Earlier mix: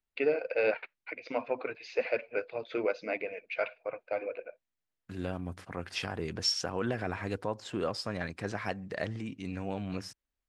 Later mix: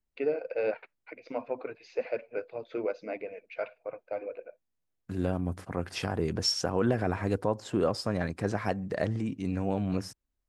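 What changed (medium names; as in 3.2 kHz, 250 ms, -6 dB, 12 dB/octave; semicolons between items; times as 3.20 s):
second voice +7.0 dB; master: add peaking EQ 2.9 kHz -9 dB 2.5 oct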